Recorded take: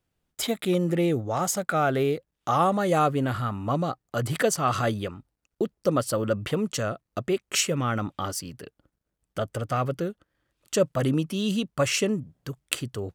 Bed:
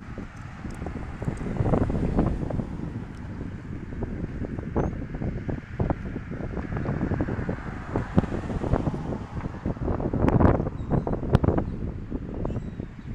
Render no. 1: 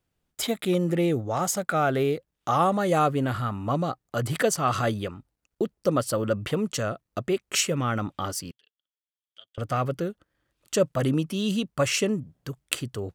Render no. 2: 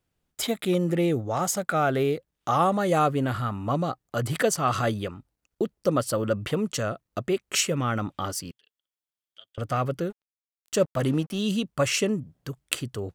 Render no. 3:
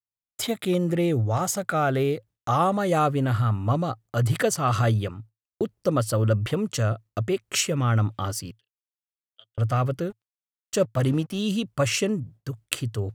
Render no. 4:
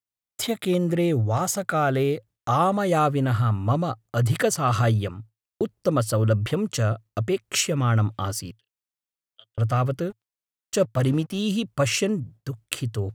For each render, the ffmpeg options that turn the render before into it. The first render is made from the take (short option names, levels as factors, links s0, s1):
-filter_complex "[0:a]asettb=1/sr,asplit=3[s0][s1][s2];[s0]atrim=end=8.514[s3];[s1]atrim=start=8.51:end=9.58,asetpts=PTS-STARTPTS,afade=t=in:d=0.004:c=qsin,afade=t=out:st=1.066:d=0.004:c=qsin,bandpass=f=3300:t=q:w=10[s4];[s2]atrim=start=9.576[s5];[s3][s4]acrossfade=d=0.004:c1=hsin:c2=qsin[s6];[s6][s5]acrossfade=d=0.004:c1=qsin:c2=hsin"
-filter_complex "[0:a]asettb=1/sr,asplit=3[s0][s1][s2];[s0]atrim=end=10.104[s3];[s1]atrim=start=10.1:end=11.39,asetpts=PTS-STARTPTS,afade=t=in:d=0.004:c=qsin,afade=t=out:st=1.286:d=0.004:c=qsin,aeval=exprs='sgn(val(0))*max(abs(val(0))-0.00531,0)':c=same[s4];[s2]atrim=start=11.386[s5];[s3][s4]acrossfade=d=0.004:c1=hsin:c2=qsin[s6];[s6][s5]acrossfade=d=0.004:c1=qsin:c2=hsin"
-af "agate=range=0.0224:threshold=0.00562:ratio=3:detection=peak,equalizer=f=110:w=4:g=12.5"
-af "volume=1.12,alimiter=limit=0.708:level=0:latency=1"